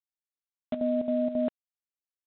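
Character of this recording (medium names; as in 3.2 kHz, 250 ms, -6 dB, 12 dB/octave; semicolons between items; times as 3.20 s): chopped level 3.7 Hz, depth 65%, duty 75%; G.726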